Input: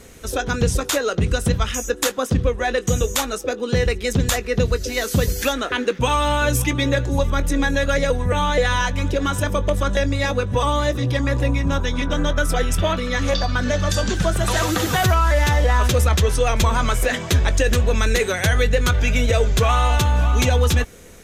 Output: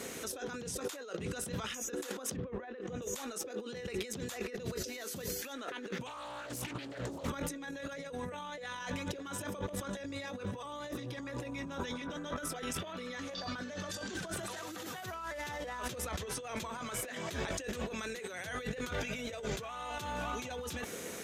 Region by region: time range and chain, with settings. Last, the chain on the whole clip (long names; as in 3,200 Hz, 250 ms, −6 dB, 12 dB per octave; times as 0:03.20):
0:02.36–0:03.02: Bessel low-pass filter 1,700 Hz + envelope flattener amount 50%
0:06.06–0:07.30: gain into a clipping stage and back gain 11 dB + mains-hum notches 50/100/150/200/250/300/350/400 Hz + highs frequency-modulated by the lows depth 0.63 ms
whole clip: brickwall limiter −17.5 dBFS; high-pass filter 200 Hz 12 dB per octave; compressor whose output falls as the input rises −37 dBFS, ratio −1; level −4 dB